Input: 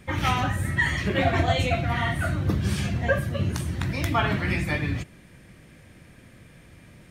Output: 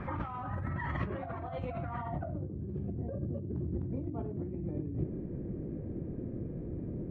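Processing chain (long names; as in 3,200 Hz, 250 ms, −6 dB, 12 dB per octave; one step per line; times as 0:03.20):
dynamic equaliser 1,700 Hz, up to −6 dB, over −39 dBFS, Q 1.7
in parallel at 0 dB: brickwall limiter −18 dBFS, peak gain reduction 7.5 dB
on the sum: low-pass filter sweep 1,200 Hz → 380 Hz, 0:01.95–0:02.53
compressor whose output falls as the input rises −30 dBFS, ratio −1
level −6.5 dB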